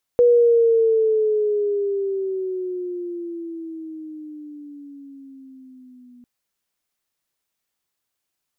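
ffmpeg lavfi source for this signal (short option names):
-f lavfi -i "aevalsrc='pow(10,(-10-34*t/6.05)/20)*sin(2*PI*486*6.05/(-12*log(2)/12)*(exp(-12*log(2)/12*t/6.05)-1))':d=6.05:s=44100"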